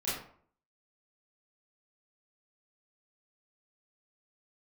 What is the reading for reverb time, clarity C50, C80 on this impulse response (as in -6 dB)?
0.55 s, 2.0 dB, 6.5 dB